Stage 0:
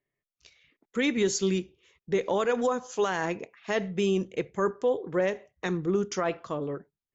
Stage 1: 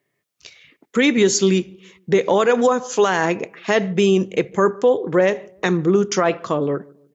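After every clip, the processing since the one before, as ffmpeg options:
-filter_complex "[0:a]highpass=110,asplit=2[a][b];[b]acompressor=threshold=-34dB:ratio=6,volume=0dB[c];[a][c]amix=inputs=2:normalize=0,asplit=2[d][e];[e]adelay=147,lowpass=f=810:p=1,volume=-23dB,asplit=2[f][g];[g]adelay=147,lowpass=f=810:p=1,volume=0.41,asplit=2[h][i];[i]adelay=147,lowpass=f=810:p=1,volume=0.41[j];[d][f][h][j]amix=inputs=4:normalize=0,volume=8dB"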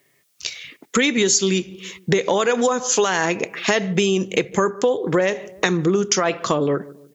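-af "highshelf=f=2.6k:g=10.5,acompressor=threshold=-24dB:ratio=4,volume=7dB"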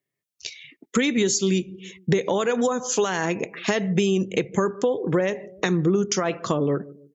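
-af "afftdn=nr=18:nf=-40,equalizer=f=110:w=0.31:g=7,volume=-6.5dB"

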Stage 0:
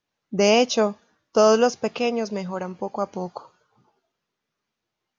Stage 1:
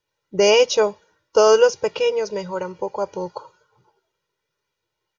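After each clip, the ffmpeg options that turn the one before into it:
-af "aecho=1:1:2.1:0.94"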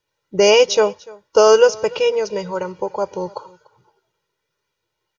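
-af "aecho=1:1:293:0.0708,volume=2.5dB"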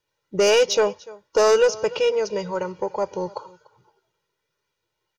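-af "asoftclip=type=tanh:threshold=-9dB,volume=-2dB"

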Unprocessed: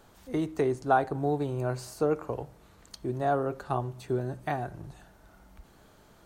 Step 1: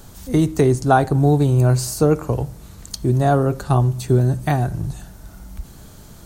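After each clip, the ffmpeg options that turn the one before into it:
-af "bass=f=250:g=12,treble=f=4k:g=12,volume=8dB"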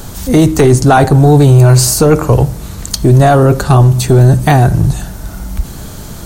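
-af "apsyclip=17dB,volume=-2dB"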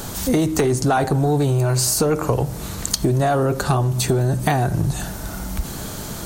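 -af "lowshelf=f=120:g=-9.5,acompressor=threshold=-16dB:ratio=6"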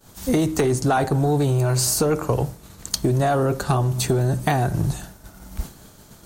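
-af "agate=range=-33dB:threshold=-19dB:ratio=3:detection=peak,volume=-1.5dB"

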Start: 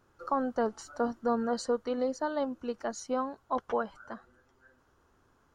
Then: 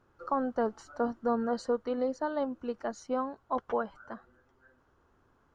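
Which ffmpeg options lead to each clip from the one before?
-af "lowpass=f=2.6k:p=1"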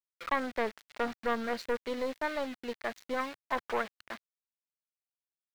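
-af "aeval=exprs='(tanh(14.1*val(0)+0.6)-tanh(0.6))/14.1':c=same,aeval=exprs='val(0)*gte(abs(val(0)),0.00501)':c=same,equalizer=f=125:t=o:w=1:g=-5,equalizer=f=2k:t=o:w=1:g=11,equalizer=f=4k:t=o:w=1:g=8"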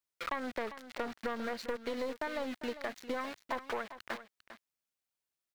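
-filter_complex "[0:a]asplit=2[a][b];[b]alimiter=level_in=2.5dB:limit=-24dB:level=0:latency=1:release=154,volume=-2.5dB,volume=2dB[c];[a][c]amix=inputs=2:normalize=0,acompressor=threshold=-32dB:ratio=3,aecho=1:1:399:0.224,volume=-2.5dB"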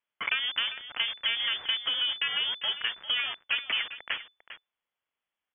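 -af "lowpass=f=3k:t=q:w=0.5098,lowpass=f=3k:t=q:w=0.6013,lowpass=f=3k:t=q:w=0.9,lowpass=f=3k:t=q:w=2.563,afreqshift=-3500,volume=7.5dB"

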